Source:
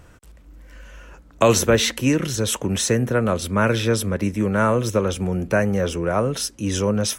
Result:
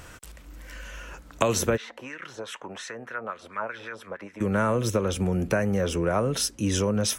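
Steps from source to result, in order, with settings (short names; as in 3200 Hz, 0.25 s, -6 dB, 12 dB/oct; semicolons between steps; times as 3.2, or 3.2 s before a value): compressor 6:1, threshold -20 dBFS, peak gain reduction 9.5 dB; 1.76–4.4 LFO band-pass sine 1.9 Hz -> 8.5 Hz 690–1900 Hz; mismatched tape noise reduction encoder only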